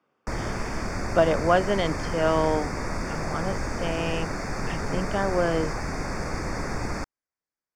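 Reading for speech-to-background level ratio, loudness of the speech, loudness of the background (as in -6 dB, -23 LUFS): 5.0 dB, -26.5 LUFS, -31.5 LUFS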